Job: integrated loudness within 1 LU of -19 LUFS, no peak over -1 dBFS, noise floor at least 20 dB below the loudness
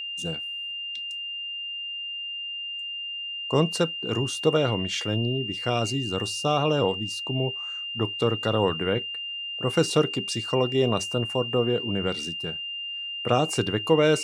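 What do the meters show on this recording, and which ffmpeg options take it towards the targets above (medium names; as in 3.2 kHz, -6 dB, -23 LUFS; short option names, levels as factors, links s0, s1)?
steady tone 2.8 kHz; tone level -31 dBFS; loudness -26.5 LUFS; peak level -7.5 dBFS; loudness target -19.0 LUFS
-> -af "bandreject=f=2800:w=30"
-af "volume=2.37,alimiter=limit=0.891:level=0:latency=1"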